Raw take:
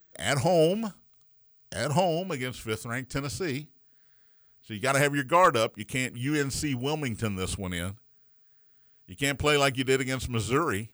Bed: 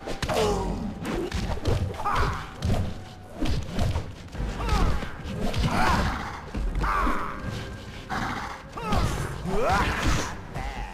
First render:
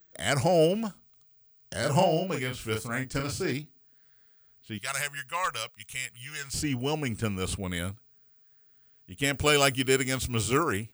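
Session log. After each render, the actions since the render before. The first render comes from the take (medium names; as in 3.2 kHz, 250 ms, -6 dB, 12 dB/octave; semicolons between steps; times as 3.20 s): 1.78–3.53 s: doubling 38 ms -5 dB; 4.78–6.54 s: amplifier tone stack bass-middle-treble 10-0-10; 9.33–10.63 s: treble shelf 5.1 kHz +8 dB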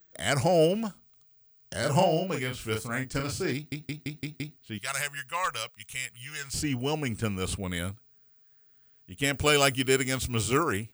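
3.55 s: stutter in place 0.17 s, 6 plays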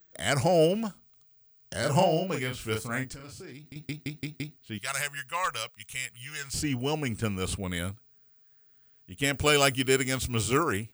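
3.14–3.76 s: compression, threshold -42 dBFS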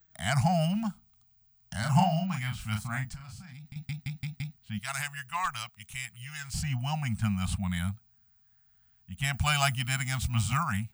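elliptic band-stop 210–730 Hz, stop band 40 dB; tilt shelf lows +4.5 dB, about 1.1 kHz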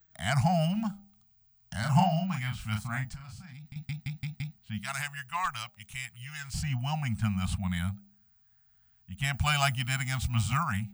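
peaking EQ 11 kHz -3.5 dB 1.5 oct; de-hum 199.5 Hz, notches 4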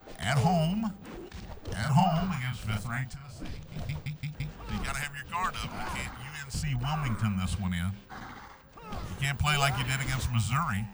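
add bed -14 dB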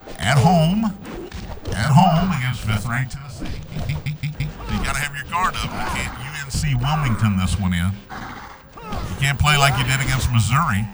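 trim +11 dB; peak limiter -1 dBFS, peak gain reduction 1 dB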